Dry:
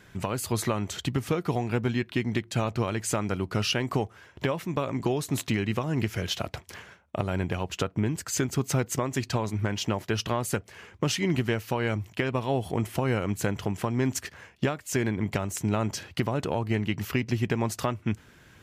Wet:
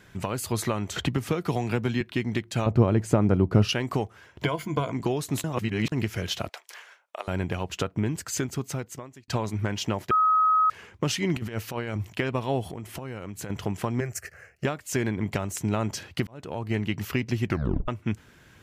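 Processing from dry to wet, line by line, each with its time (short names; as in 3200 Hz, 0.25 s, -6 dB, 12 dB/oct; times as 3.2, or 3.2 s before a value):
0.96–2.01 three-band squash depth 70%
2.66–3.69 tilt shelf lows +9.5 dB, about 1200 Hz
4.44–4.92 ripple EQ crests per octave 1.8, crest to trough 13 dB
5.44–5.92 reverse
6.49–7.28 Bessel high-pass 770 Hz, order 4
8.22–9.28 fade out
10.11–10.7 bleep 1270 Hz -17.5 dBFS
11.36–12.18 negative-ratio compressor -30 dBFS, ratio -0.5
12.71–13.5 compressor, threshold -33 dBFS
14–14.65 fixed phaser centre 960 Hz, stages 6
16.27–16.77 fade in
17.46 tape stop 0.42 s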